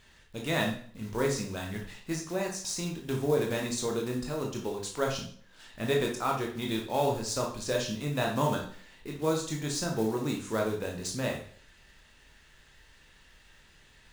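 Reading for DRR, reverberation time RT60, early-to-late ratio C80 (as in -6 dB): -0.5 dB, 0.50 s, 11.0 dB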